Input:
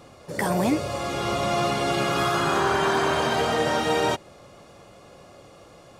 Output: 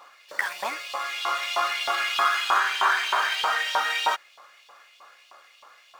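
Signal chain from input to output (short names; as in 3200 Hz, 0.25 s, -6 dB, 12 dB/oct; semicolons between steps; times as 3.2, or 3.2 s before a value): median filter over 5 samples; LFO high-pass saw up 3.2 Hz 930–3300 Hz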